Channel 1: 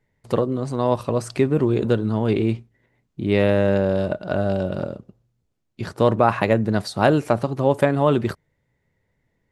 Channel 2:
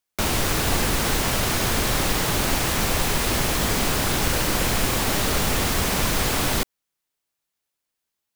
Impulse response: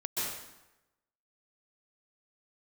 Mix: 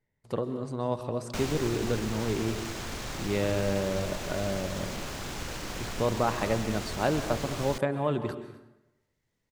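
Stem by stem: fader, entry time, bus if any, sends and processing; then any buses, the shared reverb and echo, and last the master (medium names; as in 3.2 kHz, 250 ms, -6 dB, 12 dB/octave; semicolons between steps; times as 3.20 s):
-11.5 dB, 0.00 s, send -14 dB, echo send -18 dB, none
-2.0 dB, 1.15 s, no send, no echo send, median filter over 5 samples; peaking EQ 7.2 kHz +7.5 dB 0.93 oct; auto duck -12 dB, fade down 1.80 s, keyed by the first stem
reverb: on, RT60 0.95 s, pre-delay 117 ms
echo: delay 250 ms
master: none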